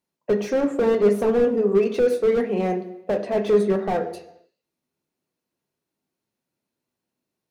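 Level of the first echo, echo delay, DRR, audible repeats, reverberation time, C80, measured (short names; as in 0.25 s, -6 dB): none, none, 6.5 dB, none, 0.85 s, 14.5 dB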